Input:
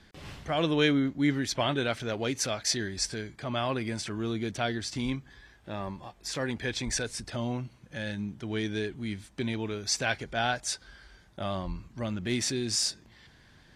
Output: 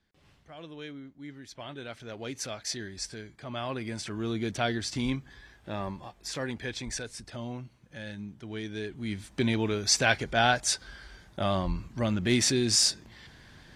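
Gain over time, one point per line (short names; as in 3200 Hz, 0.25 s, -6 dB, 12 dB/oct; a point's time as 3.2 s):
1.28 s -18 dB
2.37 s -6 dB
3.41 s -6 dB
4.51 s +1.5 dB
5.81 s +1.5 dB
7.06 s -5.5 dB
8.71 s -5.5 dB
9.35 s +5 dB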